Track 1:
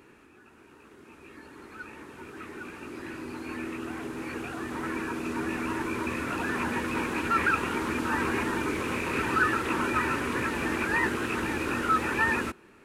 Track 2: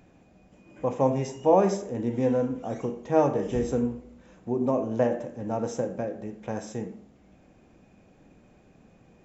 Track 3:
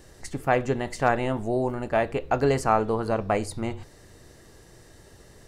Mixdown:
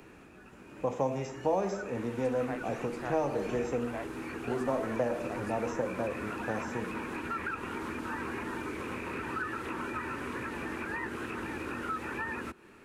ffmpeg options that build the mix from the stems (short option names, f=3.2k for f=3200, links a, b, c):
-filter_complex "[0:a]acompressor=threshold=-38dB:ratio=2.5,volume=0.5dB[a];[1:a]volume=-1dB,asplit=2[b][c];[2:a]adelay=2000,volume=-17dB[d];[c]apad=whole_len=329582[e];[d][e]sidechaingate=range=-33dB:threshold=-46dB:ratio=16:detection=peak[f];[a][b][f]amix=inputs=3:normalize=0,acrossover=split=86|460|2300[g][h][i][j];[g]acompressor=threshold=-51dB:ratio=4[k];[h]acompressor=threshold=-36dB:ratio=4[l];[i]acompressor=threshold=-29dB:ratio=4[m];[j]acompressor=threshold=-51dB:ratio=4[n];[k][l][m][n]amix=inputs=4:normalize=0"